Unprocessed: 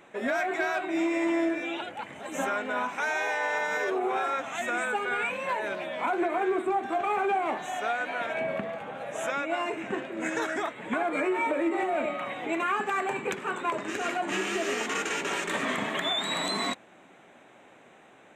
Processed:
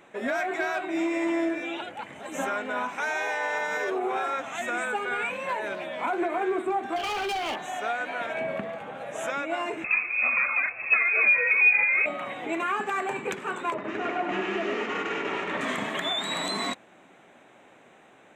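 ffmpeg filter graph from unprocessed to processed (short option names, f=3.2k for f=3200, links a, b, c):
-filter_complex "[0:a]asettb=1/sr,asplit=3[a][b][c];[a]atrim=end=6.964[d];[b]atrim=start=6.96:end=7.56,asetpts=PTS-STARTPTS,afade=t=in:d=0.004:c=qsin,afade=t=out:st=0.596:d=0.004:c=qsin,lowpass=f=3.1k:t=q:w=13,bandreject=f=1.1k:w=14,volume=27dB,asoftclip=hard,volume=-27dB[e];[c]atrim=start=7.556[f];[d][e]acrossfade=d=0.004:c1=hsin:c2=qsin[g];[g][f]acrossfade=d=0.004:c1=qsin:c2=hsin,asettb=1/sr,asplit=3[h][i][j];[h]atrim=end=9.844[k];[i]atrim=start=9.84:end=12.06,asetpts=PTS-STARTPTS,afade=t=in:d=0.004:c=qsin,afade=t=out:st=2.216:d=0.004:c=qsin,equalizer=f=210:w=0.53:g=11,lowpass=f=2.4k:t=q:w=0.5098,lowpass=f=2.4k:t=q:w=0.6013,lowpass=f=2.4k:t=q:w=0.9,lowpass=f=2.4k:t=q:w=2.563,afreqshift=-2800,bandreject=f=920:w=7.8[l];[j]atrim=start=12.056[m];[k][l]acrossfade=d=0.004:c1=hsin:c2=qsin[n];[n][m]acrossfade=d=0.004:c1=qsin:c2=hsin,asettb=1/sr,asplit=3[o][p][q];[o]atrim=end=13.744[r];[p]atrim=start=13.74:end=15.61,asetpts=PTS-STARTPTS,afade=t=in:d=0.004:c=qsin,afade=t=out:st=1.866:d=0.004:c=qsin,lowpass=2.5k,bandreject=f=1.6k:w=18,aecho=1:1:99|198|297|396|495|594|693:0.562|0.315|0.176|0.0988|0.0553|0.031|0.0173,atrim=end_sample=82467[s];[q]atrim=start=15.606[t];[r][s]acrossfade=d=0.004:c1=hsin:c2=qsin[u];[u][t]acrossfade=d=0.004:c1=qsin:c2=hsin"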